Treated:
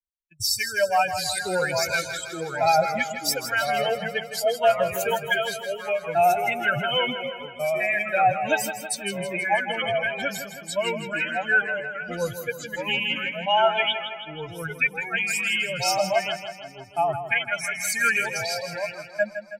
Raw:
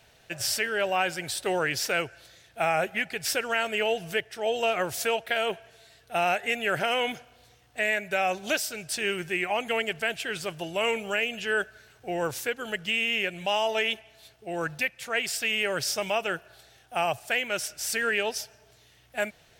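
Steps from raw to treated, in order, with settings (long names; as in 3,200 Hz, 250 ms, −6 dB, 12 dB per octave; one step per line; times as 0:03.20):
spectral dynamics exaggerated over time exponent 3
delay with pitch and tempo change per echo 686 ms, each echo −2 semitones, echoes 2, each echo −6 dB
comb filter 1.3 ms, depth 61%
downward expander −46 dBFS
on a send: repeating echo 161 ms, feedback 58%, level −10 dB
on the sum: level +8.5 dB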